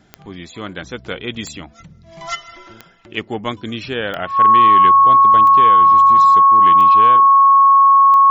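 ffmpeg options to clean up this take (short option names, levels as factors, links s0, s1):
-af "adeclick=t=4,bandreject=f=1100:w=30"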